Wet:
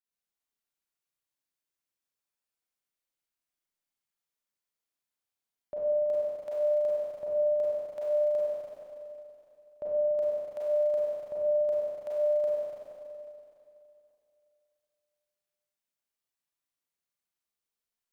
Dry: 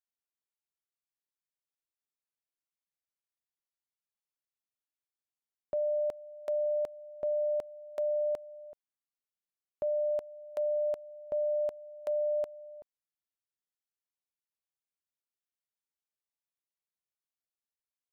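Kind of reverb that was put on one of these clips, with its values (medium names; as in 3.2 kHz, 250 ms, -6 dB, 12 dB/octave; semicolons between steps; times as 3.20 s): Schroeder reverb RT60 2.8 s, combs from 32 ms, DRR -8 dB; trim -4.5 dB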